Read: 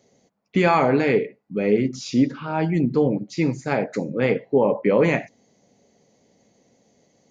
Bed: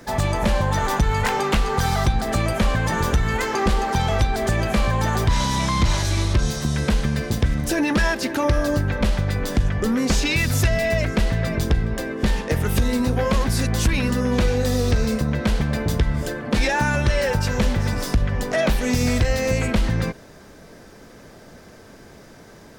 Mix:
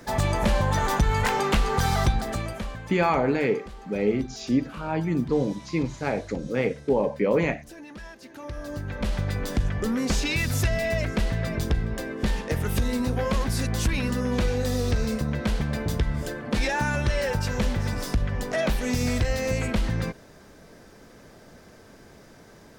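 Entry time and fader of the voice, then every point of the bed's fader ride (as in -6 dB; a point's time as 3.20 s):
2.35 s, -4.5 dB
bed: 2.09 s -2.5 dB
3.08 s -22.5 dB
8.19 s -22.5 dB
9.20 s -5 dB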